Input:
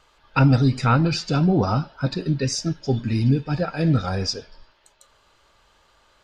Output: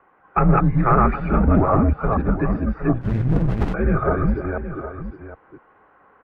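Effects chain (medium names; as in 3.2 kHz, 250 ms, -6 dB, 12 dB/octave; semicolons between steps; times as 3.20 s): chunks repeated in reverse 241 ms, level -1 dB; bass shelf 120 Hz -7 dB; in parallel at -7 dB: wavefolder -14.5 dBFS; on the sum: mistuned SSB -110 Hz 150–2000 Hz; on a send: delay 765 ms -11.5 dB; 3.01–3.74 s: on the sum: sliding maximum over 65 samples; trim +1.5 dB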